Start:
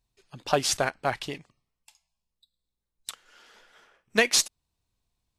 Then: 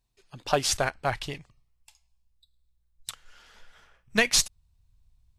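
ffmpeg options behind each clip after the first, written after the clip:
ffmpeg -i in.wav -af "asubboost=boost=12:cutoff=100" out.wav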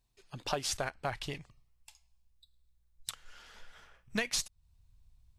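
ffmpeg -i in.wav -af "acompressor=threshold=-35dB:ratio=2.5" out.wav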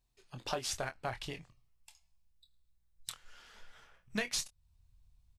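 ffmpeg -i in.wav -filter_complex "[0:a]asplit=2[link_01][link_02];[link_02]adelay=24,volume=-9dB[link_03];[link_01][link_03]amix=inputs=2:normalize=0,volume=-3dB" out.wav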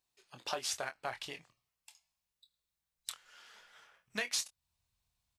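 ffmpeg -i in.wav -af "highpass=frequency=600:poles=1,volume=1dB" out.wav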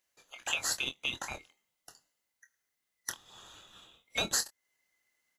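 ffmpeg -i in.wav -af "afftfilt=real='real(if(lt(b,920),b+92*(1-2*mod(floor(b/92),2)),b),0)':imag='imag(if(lt(b,920),b+92*(1-2*mod(floor(b/92),2)),b),0)':win_size=2048:overlap=0.75,volume=4.5dB" out.wav

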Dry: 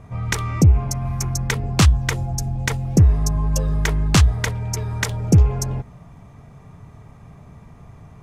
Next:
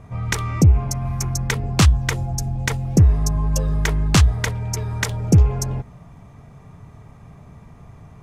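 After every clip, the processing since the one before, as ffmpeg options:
ffmpeg -i in.wav -af anull out.wav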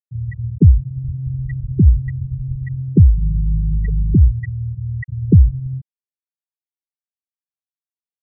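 ffmpeg -i in.wav -af "aeval=exprs='val(0)+0.0126*(sin(2*PI*60*n/s)+sin(2*PI*2*60*n/s)/2+sin(2*PI*3*60*n/s)/3+sin(2*PI*4*60*n/s)/4+sin(2*PI*5*60*n/s)/5)':channel_layout=same,afftfilt=real='re*gte(hypot(re,im),0.562)':imag='im*gte(hypot(re,im),0.562)':win_size=1024:overlap=0.75,volume=3.5dB" out.wav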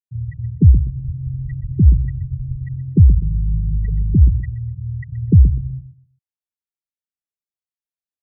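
ffmpeg -i in.wav -filter_complex "[0:a]lowshelf=frequency=240:gain=8.5,asplit=2[link_01][link_02];[link_02]adelay=125,lowpass=frequency=1100:poles=1,volume=-11.5dB,asplit=2[link_03][link_04];[link_04]adelay=125,lowpass=frequency=1100:poles=1,volume=0.25,asplit=2[link_05][link_06];[link_06]adelay=125,lowpass=frequency=1100:poles=1,volume=0.25[link_07];[link_03][link_05][link_07]amix=inputs=3:normalize=0[link_08];[link_01][link_08]amix=inputs=2:normalize=0,volume=-7.5dB" out.wav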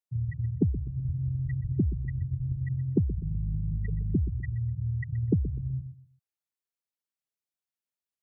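ffmpeg -i in.wav -filter_complex "[0:a]highpass=71,acrossover=split=320[link_01][link_02];[link_01]acompressor=threshold=-25dB:ratio=6[link_03];[link_03][link_02]amix=inputs=2:normalize=0,volume=-1.5dB" out.wav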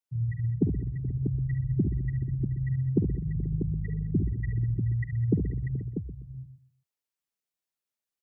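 ffmpeg -i in.wav -af "equalizer=frequency=82:width_type=o:width=0.23:gain=-14,aecho=1:1:51|70|206|428|484|641:0.282|0.376|0.126|0.133|0.106|0.398" out.wav

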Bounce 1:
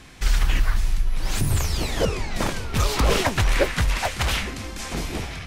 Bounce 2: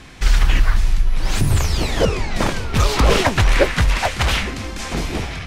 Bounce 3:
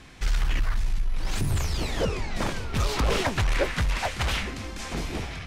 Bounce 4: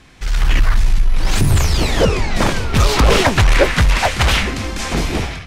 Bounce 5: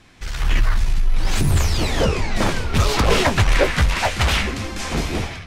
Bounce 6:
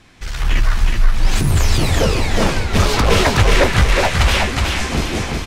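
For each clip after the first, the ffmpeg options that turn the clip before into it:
ffmpeg -i in.wav -af "highshelf=frequency=9100:gain=-9,volume=5.5dB" out.wav
ffmpeg -i in.wav -af "asoftclip=type=tanh:threshold=-9dB,volume=-7.5dB" out.wav
ffmpeg -i in.wav -af "dynaudnorm=framelen=250:gausssize=3:maxgain=11dB,volume=1.5dB" out.wav
ffmpeg -i in.wav -af "flanger=delay=8.7:depth=5.4:regen=-40:speed=1.7:shape=sinusoidal" out.wav
ffmpeg -i in.wav -af "aecho=1:1:369|738|1107|1476:0.668|0.227|0.0773|0.0263,volume=2dB" out.wav

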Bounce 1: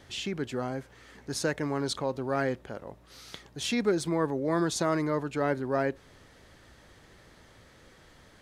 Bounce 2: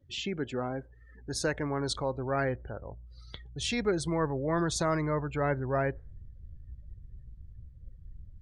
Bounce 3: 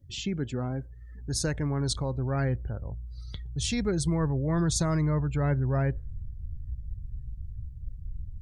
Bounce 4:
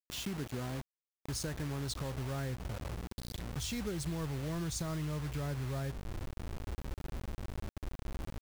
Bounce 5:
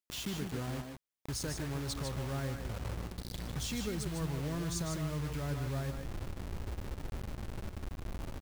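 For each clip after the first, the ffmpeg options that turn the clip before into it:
ffmpeg -i in.wav -af "asubboost=boost=9.5:cutoff=81,afftdn=noise_reduction=33:noise_floor=-45" out.wav
ffmpeg -i in.wav -af "bass=frequency=250:gain=14,treble=frequency=4000:gain=10,volume=-4dB" out.wav
ffmpeg -i in.wav -af "acrusher=bits=5:mix=0:aa=0.000001,acompressor=threshold=-31dB:ratio=3,volume=-4.5dB" out.wav
ffmpeg -i in.wav -af "aecho=1:1:142|153:0.251|0.473" out.wav

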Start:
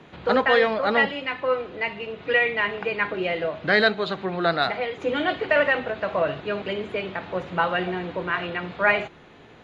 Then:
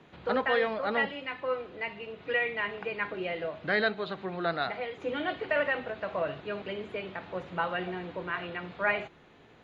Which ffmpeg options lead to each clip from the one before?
ffmpeg -i in.wav -filter_complex "[0:a]acrossover=split=4600[link_01][link_02];[link_02]acompressor=threshold=-56dB:ratio=4:attack=1:release=60[link_03];[link_01][link_03]amix=inputs=2:normalize=0,volume=-8dB" out.wav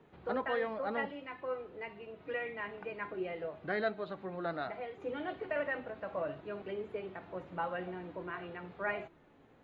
ffmpeg -i in.wav -af "equalizer=frequency=4300:width_type=o:width=2.6:gain=-10,flanger=delay=2.2:depth=1.6:regen=66:speed=0.58:shape=triangular" out.wav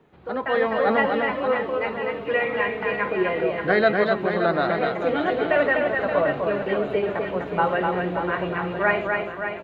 ffmpeg -i in.wav -filter_complex "[0:a]dynaudnorm=framelen=150:gausssize=7:maxgain=11dB,asplit=2[link_01][link_02];[link_02]aecho=0:1:250|575|997.5|1547|2261:0.631|0.398|0.251|0.158|0.1[link_03];[link_01][link_03]amix=inputs=2:normalize=0,volume=3.5dB" out.wav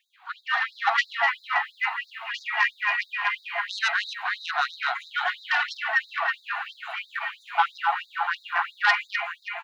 ffmpeg -i in.wav -af "aeval=exprs='0.473*sin(PI/2*2*val(0)/0.473)':channel_layout=same,afftfilt=real='re*gte(b*sr/1024,650*pow(3700/650,0.5+0.5*sin(2*PI*3*pts/sr)))':imag='im*gte(b*sr/1024,650*pow(3700/650,0.5+0.5*sin(2*PI*3*pts/sr)))':win_size=1024:overlap=0.75,volume=-4.5dB" out.wav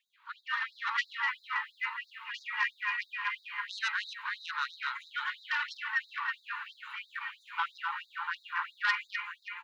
ffmpeg -i in.wav -af "asuperstop=centerf=690:order=12:qfactor=2,volume=-8dB" out.wav

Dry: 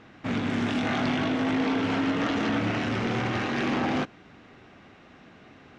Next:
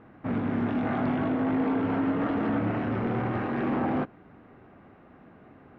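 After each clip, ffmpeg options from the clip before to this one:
ffmpeg -i in.wav -af "lowpass=1300" out.wav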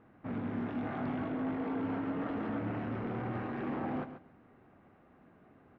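ffmpeg -i in.wav -af "aecho=1:1:136|272:0.282|0.0479,volume=-9dB" out.wav

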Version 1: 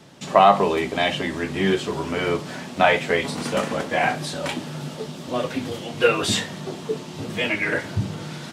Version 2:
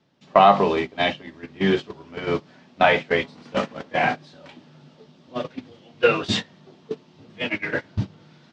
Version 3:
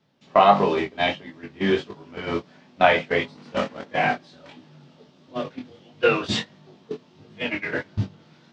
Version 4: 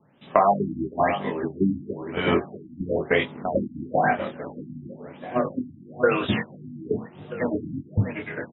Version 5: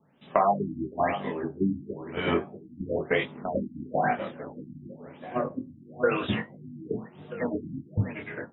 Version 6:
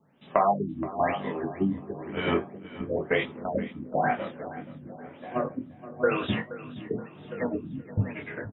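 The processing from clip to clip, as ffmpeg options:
ffmpeg -i in.wav -af "agate=range=-18dB:threshold=-22dB:ratio=16:detection=peak,lowpass=frequency=5500:width=0.5412,lowpass=frequency=5500:width=1.3066,equalizer=frequency=240:width_type=o:width=0.77:gain=2" out.wav
ffmpeg -i in.wav -af "flanger=delay=19:depth=5.2:speed=1.5,volume=2dB" out.wav
ffmpeg -i in.wav -filter_complex "[0:a]acompressor=threshold=-25dB:ratio=3,asplit=2[link_01][link_02];[link_02]adelay=642,lowpass=frequency=1800:poles=1,volume=-9dB,asplit=2[link_03][link_04];[link_04]adelay=642,lowpass=frequency=1800:poles=1,volume=0.47,asplit=2[link_05][link_06];[link_06]adelay=642,lowpass=frequency=1800:poles=1,volume=0.47,asplit=2[link_07][link_08];[link_08]adelay=642,lowpass=frequency=1800:poles=1,volume=0.47,asplit=2[link_09][link_10];[link_10]adelay=642,lowpass=frequency=1800:poles=1,volume=0.47[link_11];[link_01][link_03][link_05][link_07][link_09][link_11]amix=inputs=6:normalize=0,afftfilt=real='re*lt(b*sr/1024,300*pow(4000/300,0.5+0.5*sin(2*PI*1*pts/sr)))':imag='im*lt(b*sr/1024,300*pow(4000/300,0.5+0.5*sin(2*PI*1*pts/sr)))':win_size=1024:overlap=0.75,volume=7dB" out.wav
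ffmpeg -i in.wav -af "flanger=delay=4.3:depth=9.7:regen=-69:speed=0.27:shape=sinusoidal" out.wav
ffmpeg -i in.wav -af "aecho=1:1:474|948|1422|1896:0.158|0.0666|0.028|0.0117" out.wav

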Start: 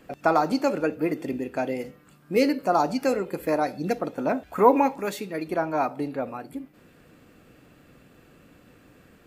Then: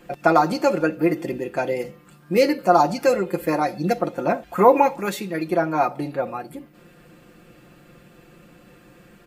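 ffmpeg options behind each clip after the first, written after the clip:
ffmpeg -i in.wav -af "aecho=1:1:5.7:0.68,volume=3dB" out.wav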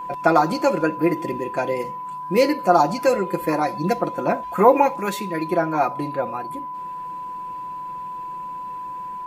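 ffmpeg -i in.wav -af "aeval=exprs='val(0)+0.0355*sin(2*PI*1000*n/s)':channel_layout=same" out.wav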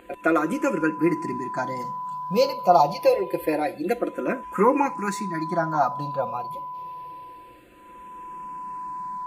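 ffmpeg -i in.wav -filter_complex "[0:a]asplit=2[link_01][link_02];[link_02]afreqshift=-0.26[link_03];[link_01][link_03]amix=inputs=2:normalize=1" out.wav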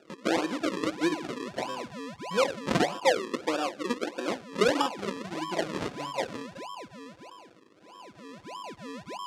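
ffmpeg -i in.wav -af "acrusher=samples=41:mix=1:aa=0.000001:lfo=1:lforange=41:lforate=1.6,highpass=240,lowpass=6500,volume=-4.5dB" out.wav

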